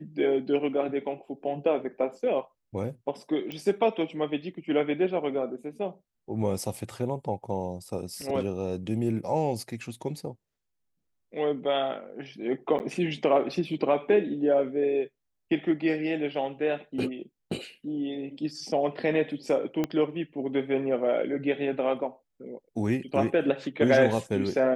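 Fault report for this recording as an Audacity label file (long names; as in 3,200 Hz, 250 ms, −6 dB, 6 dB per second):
3.520000	3.520000	click −22 dBFS
12.790000	12.800000	drop-out 9.8 ms
19.840000	19.840000	click −15 dBFS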